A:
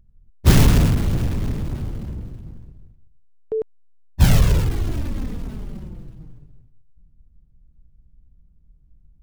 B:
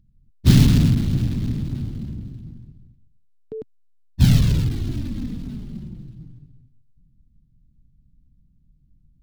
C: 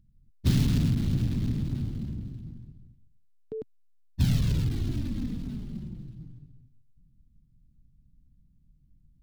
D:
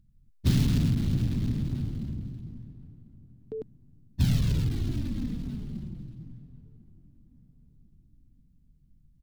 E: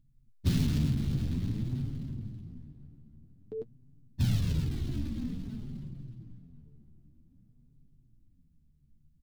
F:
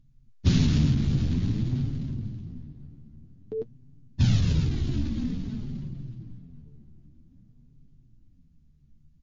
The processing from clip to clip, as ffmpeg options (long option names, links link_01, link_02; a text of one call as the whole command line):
ffmpeg -i in.wav -af "equalizer=frequency=125:width_type=o:width=1:gain=8,equalizer=frequency=250:width_type=o:width=1:gain=10,equalizer=frequency=500:width_type=o:width=1:gain=-6,equalizer=frequency=1000:width_type=o:width=1:gain=-4,equalizer=frequency=4000:width_type=o:width=1:gain=8,volume=-6.5dB" out.wav
ffmpeg -i in.wav -af "acompressor=threshold=-19dB:ratio=2.5,volume=-3.5dB" out.wav
ffmpeg -i in.wav -filter_complex "[0:a]asplit=2[link_01][link_02];[link_02]adelay=1047,lowpass=frequency=980:poles=1,volume=-21dB,asplit=2[link_03][link_04];[link_04]adelay=1047,lowpass=frequency=980:poles=1,volume=0.38,asplit=2[link_05][link_06];[link_06]adelay=1047,lowpass=frequency=980:poles=1,volume=0.38[link_07];[link_01][link_03][link_05][link_07]amix=inputs=4:normalize=0" out.wav
ffmpeg -i in.wav -af "flanger=delay=7.3:depth=6.9:regen=33:speed=0.51:shape=sinusoidal" out.wav
ffmpeg -i in.wav -af "volume=6.5dB" -ar 16000 -c:a libmp3lame -b:a 32k out.mp3